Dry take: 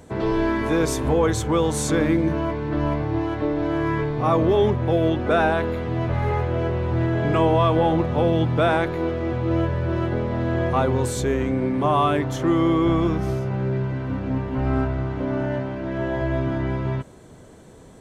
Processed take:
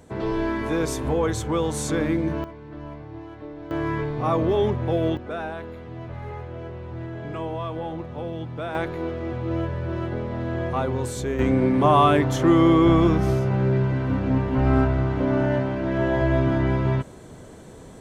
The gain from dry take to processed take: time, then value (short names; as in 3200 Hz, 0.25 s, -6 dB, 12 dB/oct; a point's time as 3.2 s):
-3.5 dB
from 2.44 s -14.5 dB
from 3.71 s -3 dB
from 5.17 s -12 dB
from 8.75 s -4.5 dB
from 11.39 s +3 dB